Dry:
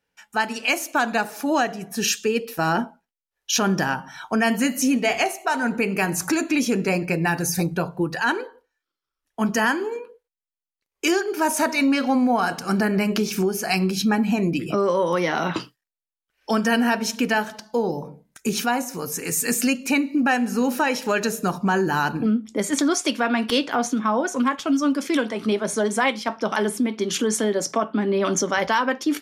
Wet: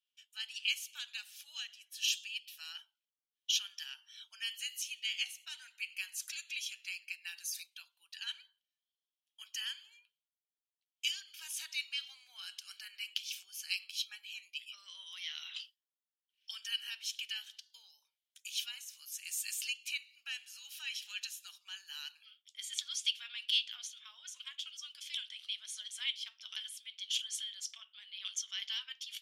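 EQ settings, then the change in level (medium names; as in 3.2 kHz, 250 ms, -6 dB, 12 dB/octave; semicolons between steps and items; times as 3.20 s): ladder high-pass 2.9 kHz, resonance 70%; -3.5 dB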